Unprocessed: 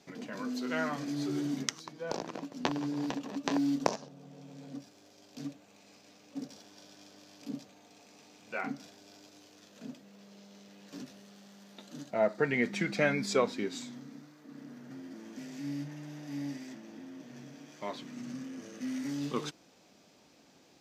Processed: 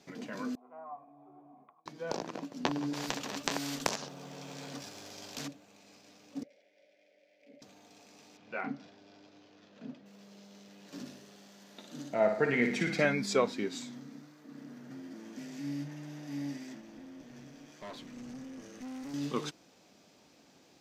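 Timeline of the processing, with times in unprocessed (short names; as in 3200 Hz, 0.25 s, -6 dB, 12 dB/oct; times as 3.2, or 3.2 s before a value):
0.55–1.86 vocal tract filter a
2.93–5.48 spectral compressor 2:1
6.43–7.62 double band-pass 1100 Hz, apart 1.9 oct
8.37–10.06 air absorption 190 m
10.79–13.05 flutter echo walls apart 9.8 m, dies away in 0.58 s
16.81–19.14 tube stage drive 40 dB, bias 0.45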